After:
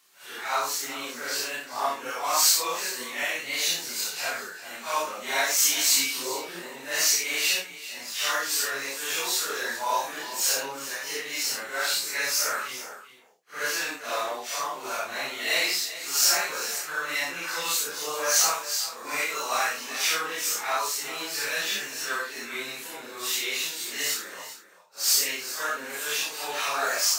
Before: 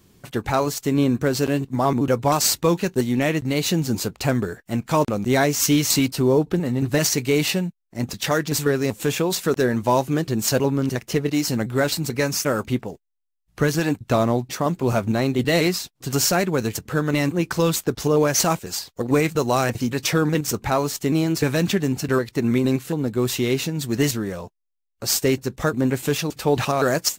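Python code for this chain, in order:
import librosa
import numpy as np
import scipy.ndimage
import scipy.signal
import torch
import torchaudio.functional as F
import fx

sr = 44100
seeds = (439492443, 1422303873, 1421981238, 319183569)

p1 = fx.phase_scramble(x, sr, seeds[0], window_ms=200)
p2 = scipy.signal.sosfilt(scipy.signal.butter(2, 1200.0, 'highpass', fs=sr, output='sos'), p1)
p3 = fx.doubler(p2, sr, ms=29.0, db=-5)
y = p3 + fx.echo_single(p3, sr, ms=393, db=-14.0, dry=0)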